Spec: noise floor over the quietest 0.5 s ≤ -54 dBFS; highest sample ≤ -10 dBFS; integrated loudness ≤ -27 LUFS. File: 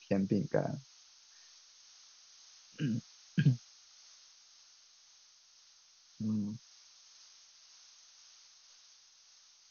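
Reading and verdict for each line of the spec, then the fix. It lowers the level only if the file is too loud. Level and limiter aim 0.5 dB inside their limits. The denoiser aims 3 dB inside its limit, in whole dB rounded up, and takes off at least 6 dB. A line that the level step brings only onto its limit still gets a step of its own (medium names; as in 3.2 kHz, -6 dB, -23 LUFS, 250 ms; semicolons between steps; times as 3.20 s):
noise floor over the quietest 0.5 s -63 dBFS: pass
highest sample -16.5 dBFS: pass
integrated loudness -35.5 LUFS: pass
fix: none needed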